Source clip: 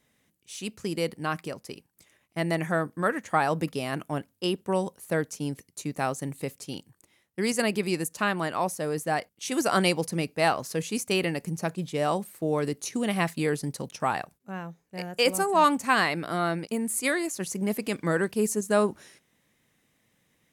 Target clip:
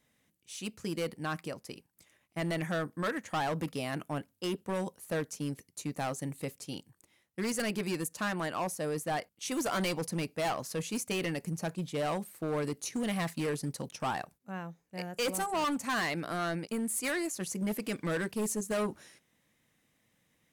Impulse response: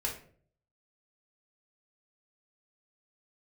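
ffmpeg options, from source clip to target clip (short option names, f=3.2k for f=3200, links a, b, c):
-af "bandreject=f=400:w=12,volume=24.5dB,asoftclip=hard,volume=-24.5dB,volume=-3.5dB"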